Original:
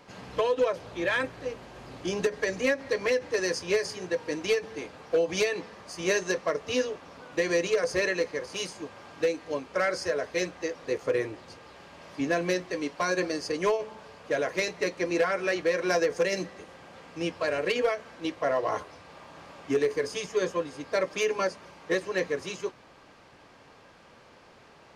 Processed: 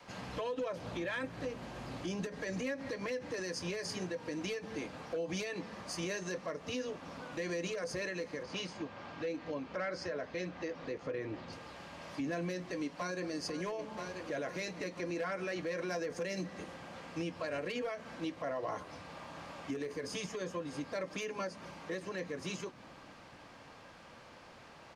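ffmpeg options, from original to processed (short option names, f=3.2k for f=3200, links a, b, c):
-filter_complex "[0:a]asettb=1/sr,asplit=3[a][b][c];[a]atrim=end=8.434[d];[b]atrim=start=8.43:end=11.53,asetpts=PTS-STARTPTS,afade=t=in:d=0.004:c=qsin,afade=t=out:st=3.096:d=0.004:c=qsin,lowpass=4.4k[e];[c]atrim=start=11.526[f];[d][e]acrossfade=d=0.004:c1=hsin:c2=qsin[g];[g][f]acrossfade=d=0.004:c1=qsin:c2=hsin,asplit=2[h][i];[i]afade=t=in:st=12.5:d=0.01,afade=t=out:st=13.31:d=0.01,aecho=0:1:490|980|1470|1960|2450|2940|3430|3920|4410:0.177828|0.12448|0.0871357|0.060995|0.0426965|0.0298875|0.0209213|0.0146449|0.0102514[j];[h][j]amix=inputs=2:normalize=0,adynamicequalizer=threshold=0.00794:dfrequency=200:dqfactor=0.89:tfrequency=200:tqfactor=0.89:attack=5:release=100:ratio=0.375:range=3.5:mode=boostabove:tftype=bell,alimiter=level_in=4.5dB:limit=-24dB:level=0:latency=1:release=184,volume=-4.5dB,equalizer=f=410:t=o:w=0.32:g=-6"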